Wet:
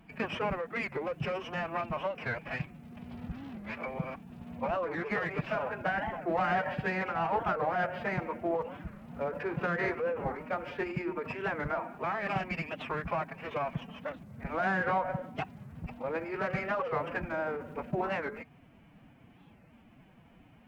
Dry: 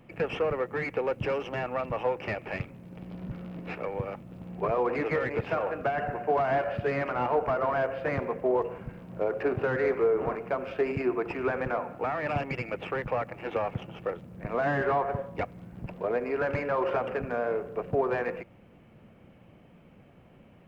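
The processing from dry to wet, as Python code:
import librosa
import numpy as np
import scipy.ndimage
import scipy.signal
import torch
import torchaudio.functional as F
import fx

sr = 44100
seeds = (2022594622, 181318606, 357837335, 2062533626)

y = fx.pitch_keep_formants(x, sr, semitones=5.0)
y = fx.peak_eq(y, sr, hz=400.0, db=-8.0, octaves=1.2)
y = fx.record_warp(y, sr, rpm=45.0, depth_cents=250.0)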